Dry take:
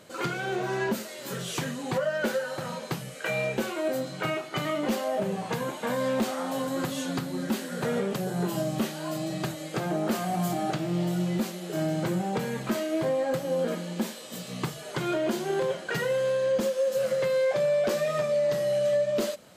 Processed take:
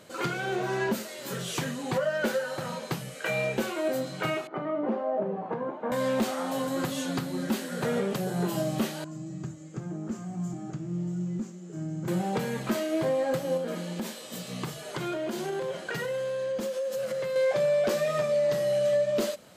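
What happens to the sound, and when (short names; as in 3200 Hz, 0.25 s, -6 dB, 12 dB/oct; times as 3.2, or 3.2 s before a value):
4.47–5.92 Butterworth band-pass 490 Hz, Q 0.52
9.04–12.08 EQ curve 100 Hz 0 dB, 330 Hz -7 dB, 640 Hz -19 dB, 1200 Hz -14 dB, 4100 Hz -23 dB, 7200 Hz -6 dB, 10000 Hz -30 dB
13.57–17.36 compressor, threshold -28 dBFS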